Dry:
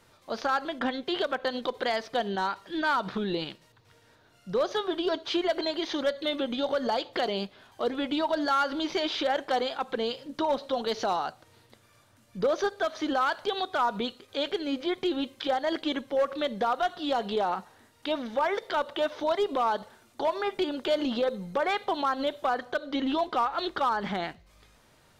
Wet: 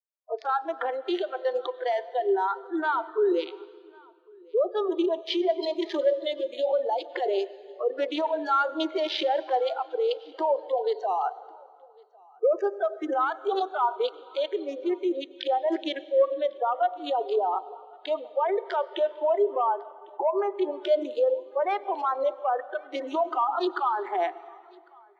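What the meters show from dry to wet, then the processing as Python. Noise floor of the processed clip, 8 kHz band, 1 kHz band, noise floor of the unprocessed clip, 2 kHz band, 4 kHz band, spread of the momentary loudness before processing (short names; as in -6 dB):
-54 dBFS, under -10 dB, +2.0 dB, -61 dBFS, -4.0 dB, -4.5 dB, 5 LU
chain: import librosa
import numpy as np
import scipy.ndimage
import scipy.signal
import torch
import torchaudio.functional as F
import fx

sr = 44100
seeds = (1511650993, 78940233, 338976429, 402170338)

p1 = fx.wiener(x, sr, points=15)
p2 = fx.dynamic_eq(p1, sr, hz=1600.0, q=6.3, threshold_db=-46.0, ratio=4.0, max_db=-3)
p3 = scipy.signal.sosfilt(scipy.signal.butter(8, 360.0, 'highpass', fs=sr, output='sos'), p2)
p4 = fx.over_compress(p3, sr, threshold_db=-34.0, ratio=-0.5)
p5 = p3 + (p4 * 10.0 ** (1.0 / 20.0))
p6 = fx.noise_reduce_blind(p5, sr, reduce_db=27)
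p7 = p6 + fx.echo_single(p6, sr, ms=1101, db=-19.0, dry=0)
p8 = fx.rev_plate(p7, sr, seeds[0], rt60_s=2.8, hf_ratio=0.85, predelay_ms=80, drr_db=10.5)
p9 = fx.spectral_expand(p8, sr, expansion=1.5)
y = p9 * 10.0 ** (-3.0 / 20.0)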